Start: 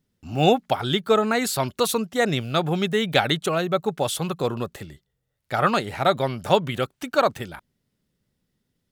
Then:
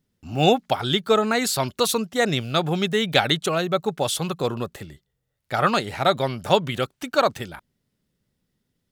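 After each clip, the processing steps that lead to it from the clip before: dynamic EQ 5100 Hz, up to +4 dB, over -41 dBFS, Q 0.82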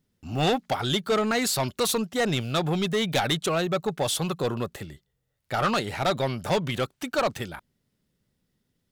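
soft clip -18.5 dBFS, distortion -9 dB

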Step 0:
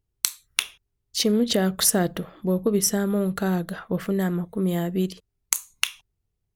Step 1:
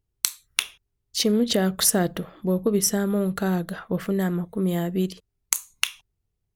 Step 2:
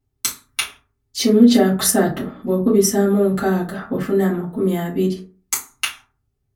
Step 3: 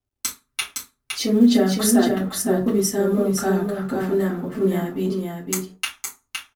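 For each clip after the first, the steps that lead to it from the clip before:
nothing audible
reverb RT60 0.35 s, pre-delay 4 ms, DRR -10 dB; gain -5 dB
G.711 law mismatch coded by A; flange 0.49 Hz, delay 2.6 ms, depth 4.7 ms, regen -45%; echo 0.513 s -4.5 dB

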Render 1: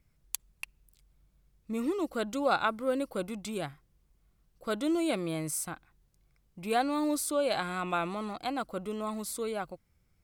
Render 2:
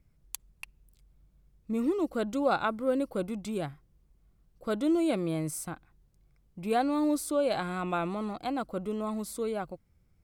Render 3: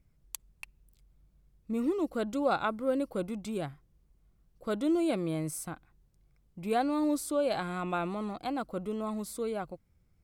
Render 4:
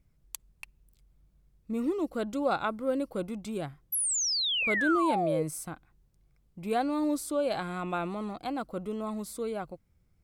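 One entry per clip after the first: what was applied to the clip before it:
tilt shelf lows +4 dB, about 830 Hz
wow and flutter 23 cents; gain -1.5 dB
painted sound fall, 3.92–5.43, 450–12000 Hz -29 dBFS

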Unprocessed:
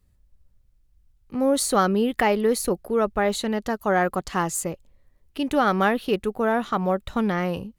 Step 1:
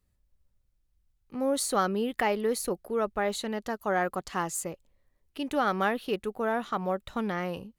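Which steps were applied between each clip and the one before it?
low shelf 210 Hz -6 dB; gain -5.5 dB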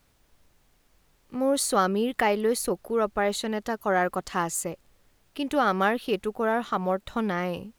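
added noise pink -70 dBFS; gain +3.5 dB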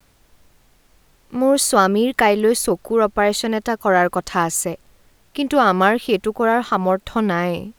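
vibrato 0.65 Hz 37 cents; gain +8.5 dB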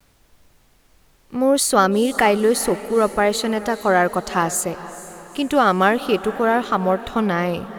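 diffused feedback echo 0.455 s, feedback 49%, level -15.5 dB; gain -1 dB

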